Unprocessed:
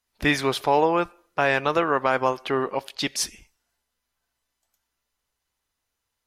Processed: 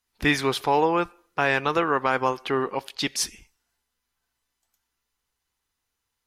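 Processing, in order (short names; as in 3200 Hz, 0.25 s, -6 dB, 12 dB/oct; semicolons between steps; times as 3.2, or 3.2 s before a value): bell 610 Hz -8.5 dB 0.25 oct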